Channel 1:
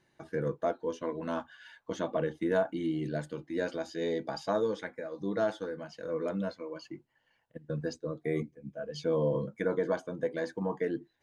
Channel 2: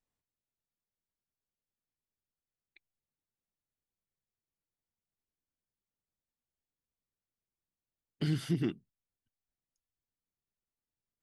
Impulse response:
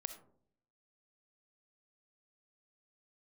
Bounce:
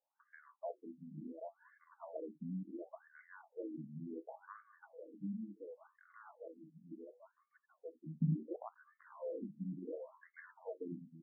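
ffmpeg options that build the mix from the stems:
-filter_complex "[0:a]volume=-13.5dB,asplit=3[link_01][link_02][link_03];[link_02]volume=-4.5dB[link_04];[1:a]lowpass=1600,equalizer=frequency=350:width=1.1:gain=-4.5,acrusher=bits=6:dc=4:mix=0:aa=0.000001,volume=-1dB,asplit=2[link_05][link_06];[link_06]volume=-16dB[link_07];[link_03]apad=whole_len=495030[link_08];[link_05][link_08]sidechaincompress=threshold=-45dB:ratio=8:attack=26:release=1050[link_09];[link_04][link_07]amix=inputs=2:normalize=0,aecho=0:1:783:1[link_10];[link_01][link_09][link_10]amix=inputs=3:normalize=0,equalizer=frequency=170:width=1.2:gain=12.5,afftfilt=real='re*between(b*sr/1024,200*pow(1600/200,0.5+0.5*sin(2*PI*0.7*pts/sr))/1.41,200*pow(1600/200,0.5+0.5*sin(2*PI*0.7*pts/sr))*1.41)':imag='im*between(b*sr/1024,200*pow(1600/200,0.5+0.5*sin(2*PI*0.7*pts/sr))/1.41,200*pow(1600/200,0.5+0.5*sin(2*PI*0.7*pts/sr))*1.41)':win_size=1024:overlap=0.75"

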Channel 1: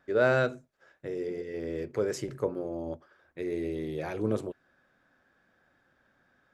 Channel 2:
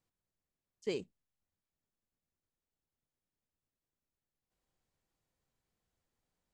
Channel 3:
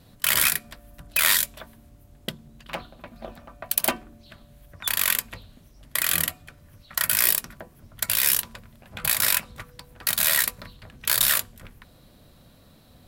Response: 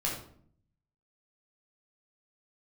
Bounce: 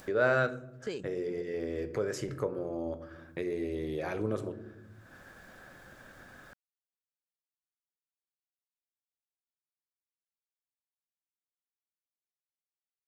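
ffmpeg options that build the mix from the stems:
-filter_complex "[0:a]agate=range=-33dB:threshold=-59dB:ratio=3:detection=peak,adynamicequalizer=threshold=0.00631:dfrequency=1400:dqfactor=1.8:tfrequency=1400:tqfactor=1.8:attack=5:release=100:ratio=0.375:range=2.5:mode=boostabove:tftype=bell,volume=-5.5dB,asplit=2[link_01][link_02];[link_02]volume=-14.5dB[link_03];[1:a]volume=-7dB[link_04];[3:a]atrim=start_sample=2205[link_05];[link_03][link_05]afir=irnorm=-1:irlink=0[link_06];[link_01][link_04][link_06]amix=inputs=3:normalize=0,acompressor=mode=upward:threshold=-28dB:ratio=2.5"

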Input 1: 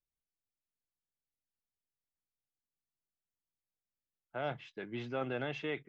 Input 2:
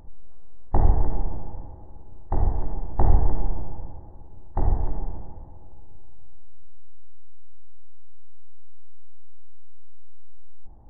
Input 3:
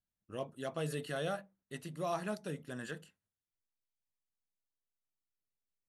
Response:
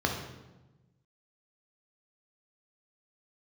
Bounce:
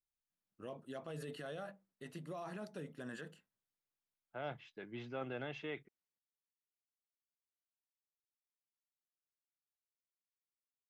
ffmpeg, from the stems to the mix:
-filter_complex "[0:a]volume=-6dB[link_01];[2:a]highshelf=frequency=4300:gain=-8.5,adelay=300,volume=-1dB,highpass=140,alimiter=level_in=13dB:limit=-24dB:level=0:latency=1:release=43,volume=-13dB,volume=0dB[link_02];[link_01][link_02]amix=inputs=2:normalize=0"

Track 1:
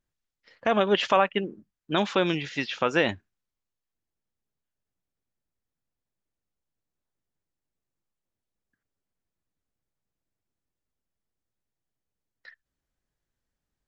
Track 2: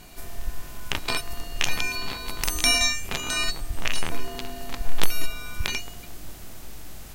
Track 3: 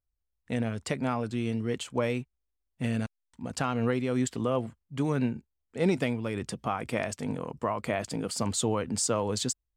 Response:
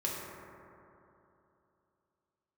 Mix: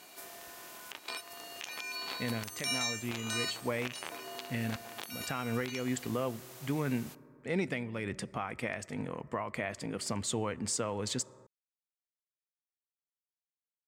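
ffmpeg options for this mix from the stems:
-filter_complex "[1:a]highpass=380,alimiter=limit=-10dB:level=0:latency=1:release=198,volume=-4.5dB,asplit=2[link_01][link_02];[link_02]volume=-21.5dB[link_03];[2:a]equalizer=frequency=2000:width=1.9:gain=8,adelay=1700,volume=-4.5dB,asplit=2[link_04][link_05];[link_05]volume=-24dB[link_06];[3:a]atrim=start_sample=2205[link_07];[link_03][link_06]amix=inputs=2:normalize=0[link_08];[link_08][link_07]afir=irnorm=-1:irlink=0[link_09];[link_01][link_04][link_09]amix=inputs=3:normalize=0,alimiter=limit=-22dB:level=0:latency=1:release=397"

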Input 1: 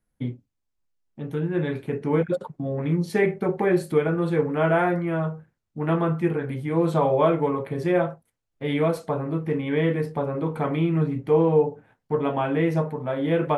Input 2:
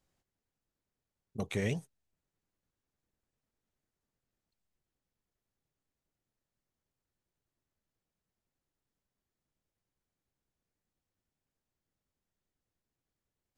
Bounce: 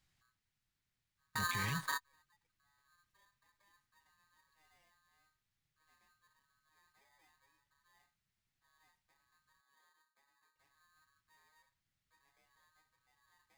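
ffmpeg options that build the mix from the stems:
ffmpeg -i stem1.wav -i stem2.wav -filter_complex "[0:a]asoftclip=type=tanh:threshold=-15.5dB,aeval=exprs='val(0)*sgn(sin(2*PI*1400*n/s))':channel_layout=same,volume=-6.5dB[link_01];[1:a]equalizer=frequency=125:width_type=o:width=1:gain=5,equalizer=frequency=250:width_type=o:width=1:gain=-4,equalizer=frequency=500:width_type=o:width=1:gain=-12,equalizer=frequency=2000:width_type=o:width=1:gain=6,equalizer=frequency=4000:width_type=o:width=1:gain=5,volume=0dB,asplit=3[link_02][link_03][link_04];[link_02]atrim=end=9.61,asetpts=PTS-STARTPTS,afade=type=out:start_time=9.606:duration=0.004:curve=hsin[link_05];[link_03]atrim=start=9.61:end=10.59,asetpts=PTS-STARTPTS,volume=0[link_06];[link_04]atrim=start=10.59,asetpts=PTS-STARTPTS,afade=type=in:duration=0.004:curve=hsin[link_07];[link_05][link_06][link_07]concat=n=3:v=0:a=1,asplit=2[link_08][link_09];[link_09]apad=whole_len=598763[link_10];[link_01][link_10]sidechaingate=range=-44dB:threshold=-58dB:ratio=16:detection=peak[link_11];[link_11][link_08]amix=inputs=2:normalize=0,alimiter=level_in=5dB:limit=-24dB:level=0:latency=1:release=38,volume=-5dB" out.wav

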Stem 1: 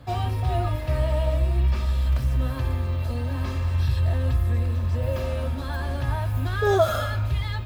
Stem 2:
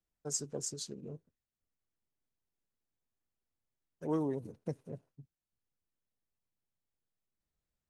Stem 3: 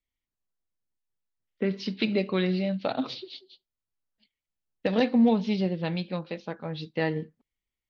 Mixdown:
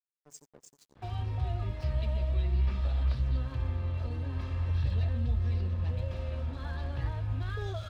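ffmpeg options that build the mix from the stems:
ffmpeg -i stem1.wav -i stem2.wav -i stem3.wav -filter_complex "[0:a]lowpass=3400,adelay=950,volume=-5.5dB[link_01];[1:a]volume=-12.5dB,asplit=2[link_02][link_03];[link_03]volume=-15.5dB[link_04];[2:a]asplit=2[link_05][link_06];[link_06]adelay=6.8,afreqshift=1[link_07];[link_05][link_07]amix=inputs=2:normalize=1,volume=-13dB[link_08];[link_04]aecho=0:1:87:1[link_09];[link_01][link_02][link_08][link_09]amix=inputs=4:normalize=0,acrossover=split=130|3000[link_10][link_11][link_12];[link_11]acompressor=threshold=-41dB:ratio=6[link_13];[link_10][link_13][link_12]amix=inputs=3:normalize=0,aeval=exprs='sgn(val(0))*max(abs(val(0))-0.00224,0)':channel_layout=same" out.wav

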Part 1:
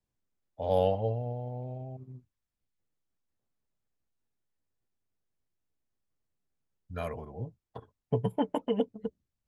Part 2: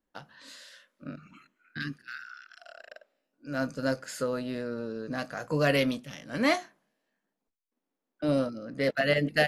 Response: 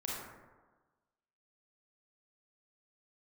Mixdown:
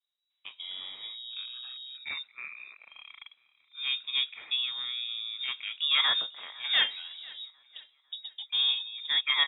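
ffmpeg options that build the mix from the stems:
-filter_complex "[0:a]acompressor=threshold=-36dB:ratio=6,volume=-2.5dB[link_01];[1:a]highpass=220,adelay=300,volume=0dB,asplit=2[link_02][link_03];[link_03]volume=-22.5dB,aecho=0:1:499|998|1497|1996|2495|2994:1|0.42|0.176|0.0741|0.0311|0.0131[link_04];[link_01][link_02][link_04]amix=inputs=3:normalize=0,lowpass=frequency=3300:width_type=q:width=0.5098,lowpass=frequency=3300:width_type=q:width=0.6013,lowpass=frequency=3300:width_type=q:width=0.9,lowpass=frequency=3300:width_type=q:width=2.563,afreqshift=-3900,lowshelf=frequency=120:gain=-6.5"

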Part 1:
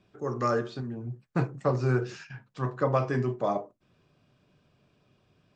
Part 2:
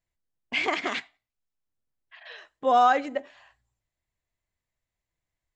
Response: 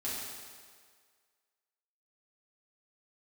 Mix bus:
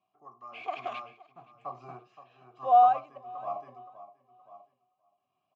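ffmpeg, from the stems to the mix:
-filter_complex "[0:a]aecho=1:1:1:0.68,volume=-1.5dB,asplit=2[link_01][link_02];[link_02]volume=-5.5dB[link_03];[1:a]volume=2dB,asplit=2[link_04][link_05];[link_05]volume=-17.5dB[link_06];[link_03][link_06]amix=inputs=2:normalize=0,aecho=0:1:521|1042|1563|2084:1|0.26|0.0676|0.0176[link_07];[link_01][link_04][link_07]amix=inputs=3:normalize=0,highshelf=frequency=5300:gain=5.5,tremolo=f=1.1:d=0.7,asplit=3[link_08][link_09][link_10];[link_08]bandpass=frequency=730:width_type=q:width=8,volume=0dB[link_11];[link_09]bandpass=frequency=1090:width_type=q:width=8,volume=-6dB[link_12];[link_10]bandpass=frequency=2440:width_type=q:width=8,volume=-9dB[link_13];[link_11][link_12][link_13]amix=inputs=3:normalize=0"

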